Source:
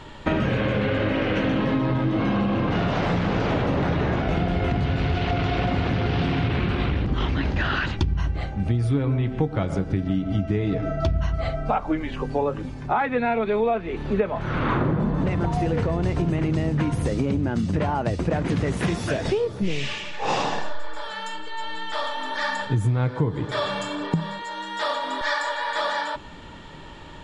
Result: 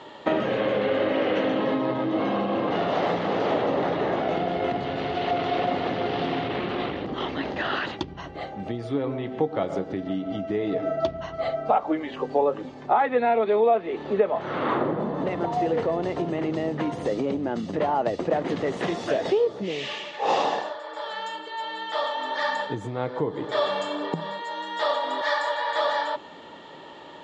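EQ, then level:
high-frequency loss of the air 65 metres
loudspeaker in its box 480–8,300 Hz, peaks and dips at 1,000 Hz −4 dB, 1,500 Hz −8 dB, 2,400 Hz −7 dB, 5,300 Hz −3 dB
spectral tilt −1.5 dB per octave
+4.5 dB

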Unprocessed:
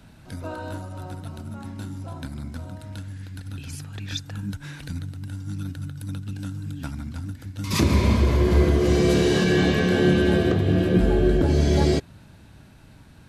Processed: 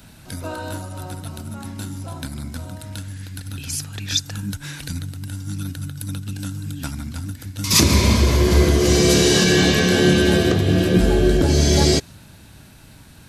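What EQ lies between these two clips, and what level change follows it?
high-shelf EQ 11,000 Hz +7 dB
dynamic equaliser 5,800 Hz, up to +5 dB, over −48 dBFS, Q 1.3
high-shelf EQ 2,700 Hz +8 dB
+3.0 dB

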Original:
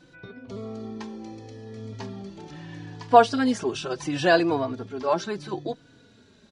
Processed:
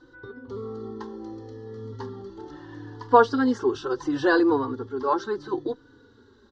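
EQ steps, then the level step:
high-frequency loss of the air 190 metres
phaser with its sweep stopped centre 650 Hz, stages 6
+5.0 dB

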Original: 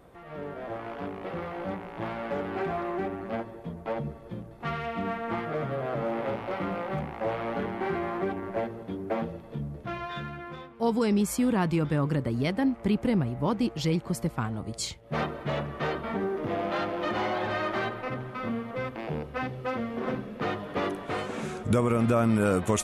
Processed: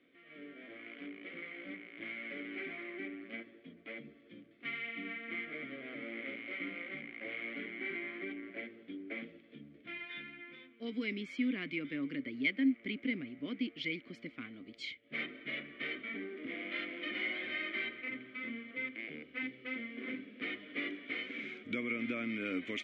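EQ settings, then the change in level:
three-way crossover with the lows and the highs turned down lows −15 dB, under 470 Hz, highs −22 dB, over 5,100 Hz
dynamic equaliser 2,100 Hz, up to +7 dB, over −56 dBFS, Q 5.7
formant filter i
+8.5 dB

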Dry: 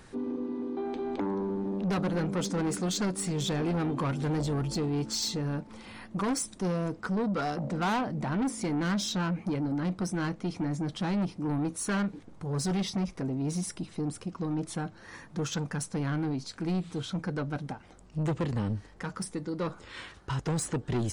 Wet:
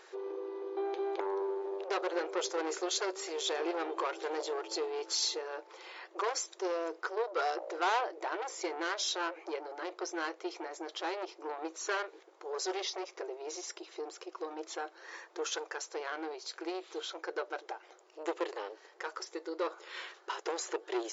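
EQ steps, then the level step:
linear-phase brick-wall band-pass 330–7,500 Hz
0.0 dB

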